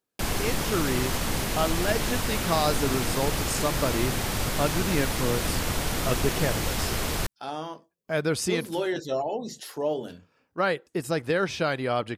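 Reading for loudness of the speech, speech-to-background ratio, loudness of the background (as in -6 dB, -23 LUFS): -29.5 LUFS, -1.5 dB, -28.0 LUFS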